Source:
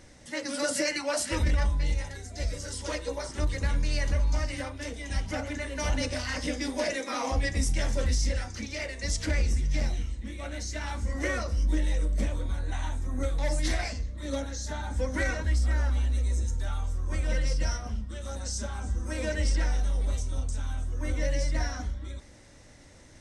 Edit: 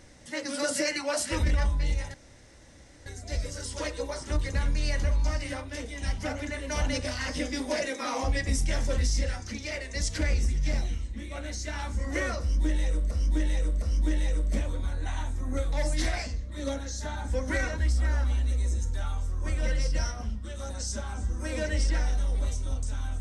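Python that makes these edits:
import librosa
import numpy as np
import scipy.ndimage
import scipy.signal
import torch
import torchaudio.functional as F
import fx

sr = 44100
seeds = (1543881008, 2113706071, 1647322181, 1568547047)

y = fx.edit(x, sr, fx.insert_room_tone(at_s=2.14, length_s=0.92),
    fx.repeat(start_s=11.48, length_s=0.71, count=3), tone=tone)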